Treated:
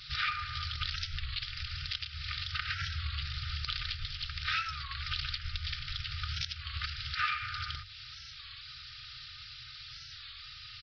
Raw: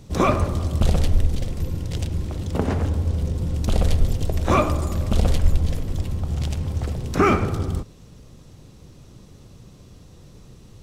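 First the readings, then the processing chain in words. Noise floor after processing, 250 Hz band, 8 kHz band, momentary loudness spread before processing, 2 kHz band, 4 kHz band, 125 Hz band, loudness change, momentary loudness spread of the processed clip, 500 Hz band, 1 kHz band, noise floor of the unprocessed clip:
−49 dBFS, below −30 dB, −16.5 dB, 8 LU, −1.5 dB, +4.0 dB, −19.0 dB, −13.5 dB, 12 LU, below −40 dB, −12.5 dB, −47 dBFS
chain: lower of the sound and its delayed copy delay 3.3 ms
brick-wall band-stop 150–1,200 Hz
spectral tilt +4 dB per octave
mains-hum notches 50/100 Hz
downward compressor 6 to 1, threshold −39 dBFS, peak gain reduction 21 dB
downsampling to 11,025 Hz
wow of a warped record 33 1/3 rpm, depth 160 cents
level +8.5 dB

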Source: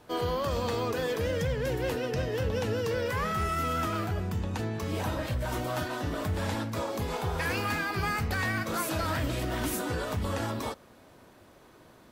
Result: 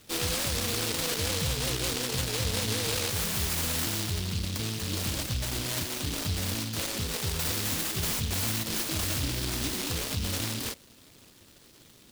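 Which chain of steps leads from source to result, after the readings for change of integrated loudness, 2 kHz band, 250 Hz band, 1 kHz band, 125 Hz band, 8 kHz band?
+2.0 dB, −2.0 dB, −1.5 dB, −7.5 dB, −0.5 dB, +12.0 dB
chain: short delay modulated by noise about 3,800 Hz, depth 0.42 ms

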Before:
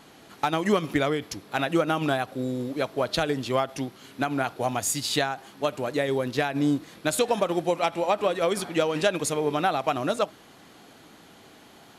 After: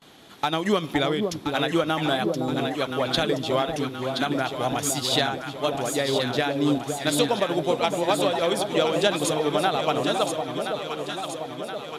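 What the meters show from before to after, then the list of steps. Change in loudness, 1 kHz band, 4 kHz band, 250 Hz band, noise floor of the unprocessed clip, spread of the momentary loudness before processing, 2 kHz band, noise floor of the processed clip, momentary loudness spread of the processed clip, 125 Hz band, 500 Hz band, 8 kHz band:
+2.0 dB, +1.5 dB, +6.5 dB, +2.0 dB, −52 dBFS, 6 LU, +1.5 dB, −38 dBFS, 6 LU, +2.0 dB, +2.0 dB, +1.5 dB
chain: parametric band 3,500 Hz +8.5 dB 0.3 octaves
noise gate with hold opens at −40 dBFS
on a send: delay that swaps between a low-pass and a high-pass 512 ms, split 880 Hz, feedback 77%, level −4 dB

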